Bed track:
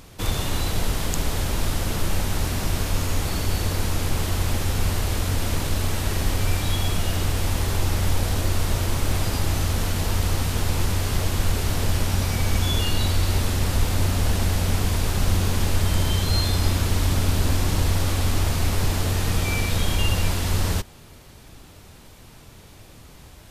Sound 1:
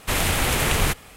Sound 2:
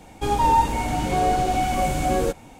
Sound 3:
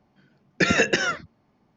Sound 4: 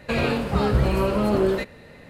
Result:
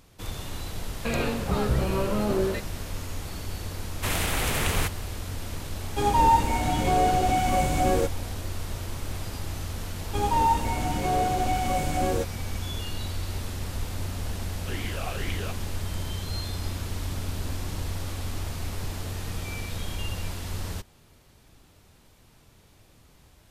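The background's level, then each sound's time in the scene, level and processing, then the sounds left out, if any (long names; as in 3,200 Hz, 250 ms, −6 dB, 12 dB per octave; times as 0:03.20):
bed track −10.5 dB
0:00.96: mix in 4 −5 dB
0:03.95: mix in 1 −5.5 dB
0:05.75: mix in 2 −1.5 dB
0:09.92: mix in 2 −4.5 dB
0:14.59: mix in 1 −0.5 dB + formant filter swept between two vowels a-i 2.1 Hz
not used: 3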